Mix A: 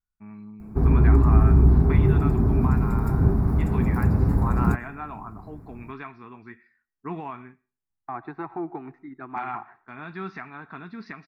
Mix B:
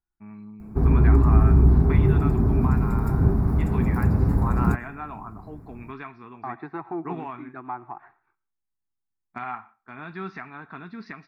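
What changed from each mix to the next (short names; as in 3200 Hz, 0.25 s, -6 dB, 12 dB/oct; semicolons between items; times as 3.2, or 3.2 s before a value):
second voice: entry -1.65 s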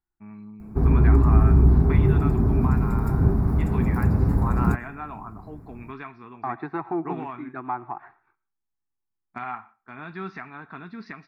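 second voice +4.0 dB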